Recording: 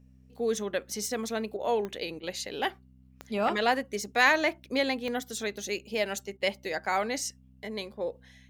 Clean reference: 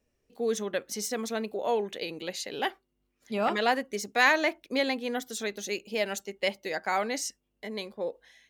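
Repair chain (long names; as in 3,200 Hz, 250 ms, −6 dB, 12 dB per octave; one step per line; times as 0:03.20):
click removal
hum removal 64.2 Hz, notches 4
repair the gap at 0:01.57/0:02.20/0:06.37, 30 ms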